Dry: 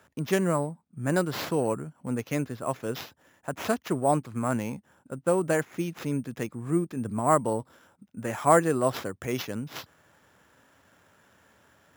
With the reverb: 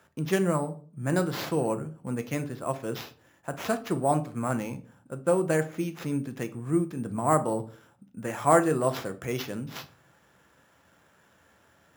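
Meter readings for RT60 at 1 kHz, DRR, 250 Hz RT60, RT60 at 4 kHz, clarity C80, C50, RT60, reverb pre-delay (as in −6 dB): 0.35 s, 8.0 dB, 0.60 s, 0.30 s, 21.0 dB, 15.5 dB, 0.45 s, 6 ms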